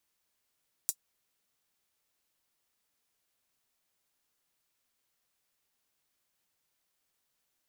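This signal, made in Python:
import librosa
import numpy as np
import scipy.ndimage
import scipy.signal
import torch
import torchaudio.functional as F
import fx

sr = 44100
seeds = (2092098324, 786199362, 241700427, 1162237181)

y = fx.drum_hat(sr, length_s=0.24, from_hz=6800.0, decay_s=0.07)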